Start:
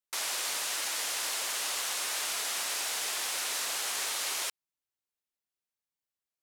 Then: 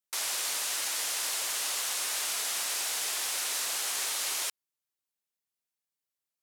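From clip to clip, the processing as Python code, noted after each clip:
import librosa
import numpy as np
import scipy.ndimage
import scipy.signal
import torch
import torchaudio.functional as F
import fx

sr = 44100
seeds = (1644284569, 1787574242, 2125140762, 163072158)

y = scipy.signal.sosfilt(scipy.signal.butter(2, 85.0, 'highpass', fs=sr, output='sos'), x)
y = fx.peak_eq(y, sr, hz=16000.0, db=4.5, octaves=1.8)
y = y * 10.0 ** (-1.5 / 20.0)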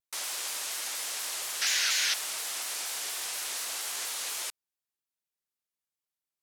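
y = fx.spec_paint(x, sr, seeds[0], shape='noise', start_s=1.61, length_s=0.53, low_hz=1400.0, high_hz=6900.0, level_db=-25.0)
y = fx.vibrato_shape(y, sr, shape='saw_down', rate_hz=4.2, depth_cents=160.0)
y = y * 10.0 ** (-3.0 / 20.0)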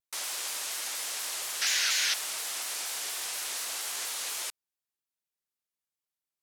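y = x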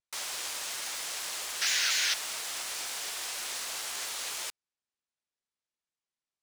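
y = scipy.signal.medfilt(x, 3)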